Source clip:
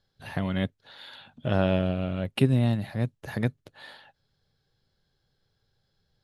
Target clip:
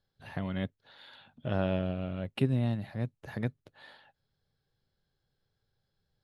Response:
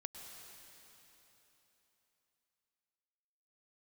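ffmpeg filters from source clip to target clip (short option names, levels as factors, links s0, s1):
-af "highshelf=f=5300:g=-7.5,volume=0.501"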